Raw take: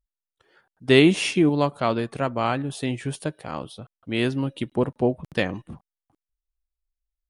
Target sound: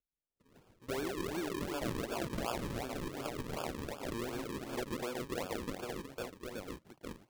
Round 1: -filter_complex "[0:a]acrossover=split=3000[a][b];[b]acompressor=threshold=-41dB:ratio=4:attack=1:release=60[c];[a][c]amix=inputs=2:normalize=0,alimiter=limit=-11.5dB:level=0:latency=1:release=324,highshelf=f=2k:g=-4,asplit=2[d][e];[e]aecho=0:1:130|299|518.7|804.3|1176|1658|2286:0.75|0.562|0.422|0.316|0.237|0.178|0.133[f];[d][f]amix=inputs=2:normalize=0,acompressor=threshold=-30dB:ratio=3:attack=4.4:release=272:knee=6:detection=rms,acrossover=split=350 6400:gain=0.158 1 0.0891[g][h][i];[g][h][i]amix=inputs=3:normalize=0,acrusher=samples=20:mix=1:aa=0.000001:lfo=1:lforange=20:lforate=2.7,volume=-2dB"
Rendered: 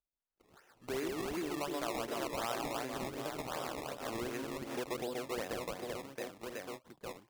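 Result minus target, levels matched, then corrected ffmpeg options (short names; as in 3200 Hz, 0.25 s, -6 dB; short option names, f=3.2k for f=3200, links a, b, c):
decimation with a swept rate: distortion -10 dB
-filter_complex "[0:a]acrossover=split=3000[a][b];[b]acompressor=threshold=-41dB:ratio=4:attack=1:release=60[c];[a][c]amix=inputs=2:normalize=0,alimiter=limit=-11.5dB:level=0:latency=1:release=324,highshelf=f=2k:g=-4,asplit=2[d][e];[e]aecho=0:1:130|299|518.7|804.3|1176|1658|2286:0.75|0.562|0.422|0.316|0.237|0.178|0.133[f];[d][f]amix=inputs=2:normalize=0,acompressor=threshold=-30dB:ratio=3:attack=4.4:release=272:knee=6:detection=rms,acrossover=split=350 6400:gain=0.158 1 0.0891[g][h][i];[g][h][i]amix=inputs=3:normalize=0,acrusher=samples=43:mix=1:aa=0.000001:lfo=1:lforange=43:lforate=2.7,volume=-2dB"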